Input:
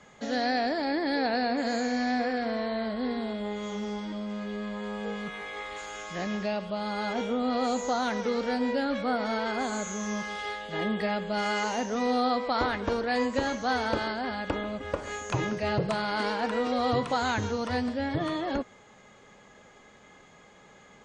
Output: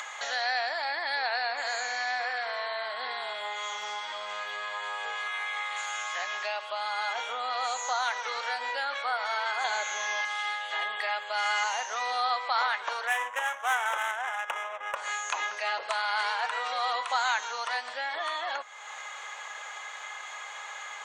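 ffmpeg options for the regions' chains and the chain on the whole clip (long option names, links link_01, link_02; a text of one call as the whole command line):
ffmpeg -i in.wav -filter_complex "[0:a]asettb=1/sr,asplit=3[link_01][link_02][link_03];[link_01]atrim=end=9.644[link_04];[link_02]atrim=start=9.64:end=10.25,asetpts=PTS-STARTPTS,afade=type=in:duration=0.004:curve=qsin,afade=type=out:start_time=0.606:duration=0.004:curve=qsin,lowpass=frequency=5100:width=0.5412,lowpass=frequency=5100:width=1.3066,equalizer=frequency=1200:width_type=o:width=0.31:gain=-11.5,acontrast=51[link_05];[link_03]atrim=start=10.246[link_06];[link_04][link_05]acrossfade=duration=0.004:curve1=hsin:curve2=qsin[link_07];[link_07][link_06]acrossfade=duration=0.004:curve1=qsin:curve2=hsin,asettb=1/sr,asplit=3[link_08][link_09][link_10];[link_08]atrim=end=13.074[link_11];[link_09]atrim=start=13.07:end=14.96,asetpts=PTS-STARTPTS,afade=type=in:duration=0.004:curve=qsin,afade=type=out:start_time=1.886:duration=0.004:curve=qsin,aemphasis=mode=production:type=bsi,adynamicsmooth=sensitivity=5:basefreq=640,asuperstop=centerf=4400:order=4:qfactor=2[link_12];[link_10]atrim=start=14.956[link_13];[link_11][link_12]acrossfade=duration=0.004:curve1=hsin:curve2=qsin[link_14];[link_14][link_13]acrossfade=duration=0.004:curve1=qsin:curve2=hsin,highpass=frequency=840:width=0.5412,highpass=frequency=840:width=1.3066,equalizer=frequency=5000:width=6:gain=-7.5,acompressor=mode=upward:threshold=-31dB:ratio=2.5,volume=3.5dB" out.wav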